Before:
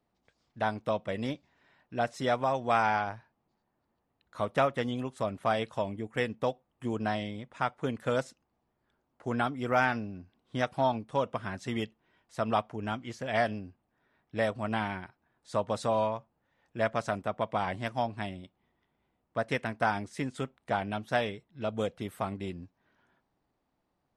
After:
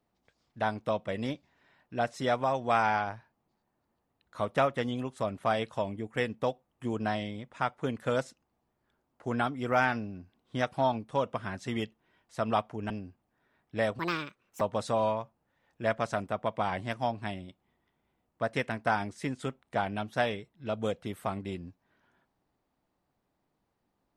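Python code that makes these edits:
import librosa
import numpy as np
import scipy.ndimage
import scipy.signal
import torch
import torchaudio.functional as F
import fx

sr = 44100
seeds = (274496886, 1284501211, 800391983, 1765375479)

y = fx.edit(x, sr, fx.cut(start_s=12.9, length_s=0.6),
    fx.speed_span(start_s=14.59, length_s=0.97, speed=1.57), tone=tone)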